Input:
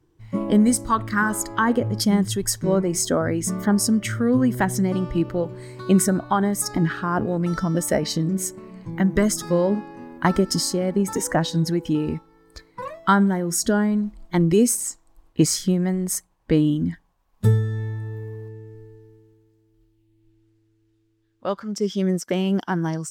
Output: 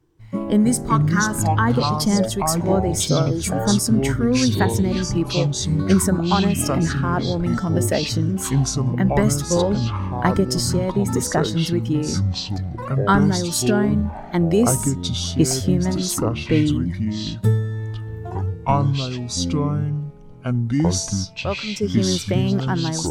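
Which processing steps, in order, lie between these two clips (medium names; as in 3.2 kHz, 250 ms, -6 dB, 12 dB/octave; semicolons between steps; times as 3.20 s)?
spectral replace 3.09–3.67 s, 1.4–6.4 kHz both; ever faster or slower copies 176 ms, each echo -6 st, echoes 2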